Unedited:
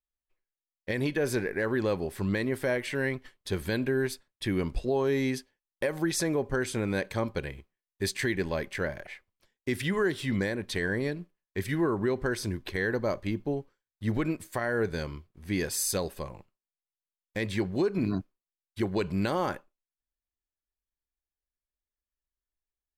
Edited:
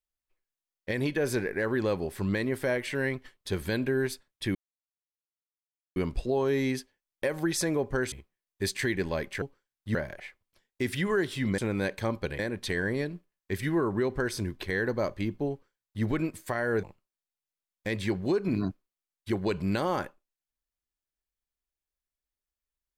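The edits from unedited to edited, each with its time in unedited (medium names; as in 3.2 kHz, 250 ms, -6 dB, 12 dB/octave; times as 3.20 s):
4.55 s: insert silence 1.41 s
6.71–7.52 s: move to 10.45 s
13.57–14.10 s: copy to 8.82 s
14.89–16.33 s: delete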